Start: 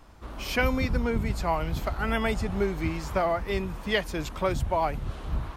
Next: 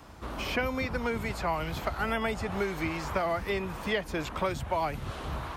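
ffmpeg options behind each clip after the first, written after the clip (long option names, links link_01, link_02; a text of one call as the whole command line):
ffmpeg -i in.wav -filter_complex "[0:a]highpass=62,acrossover=split=440|1100|3000[link_01][link_02][link_03][link_04];[link_01]acompressor=threshold=-40dB:ratio=4[link_05];[link_02]acompressor=threshold=-39dB:ratio=4[link_06];[link_03]acompressor=threshold=-40dB:ratio=4[link_07];[link_04]acompressor=threshold=-52dB:ratio=4[link_08];[link_05][link_06][link_07][link_08]amix=inputs=4:normalize=0,volume=5dB" out.wav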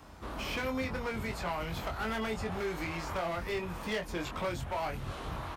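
ffmpeg -i in.wav -filter_complex "[0:a]volume=28dB,asoftclip=hard,volume=-28dB,asplit=2[link_01][link_02];[link_02]adelay=23,volume=-5dB[link_03];[link_01][link_03]amix=inputs=2:normalize=0,volume=-3.5dB" out.wav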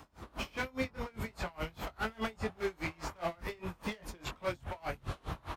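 ffmpeg -i in.wav -af "aeval=exprs='val(0)*pow(10,-28*(0.5-0.5*cos(2*PI*4.9*n/s))/20)':channel_layout=same,volume=2.5dB" out.wav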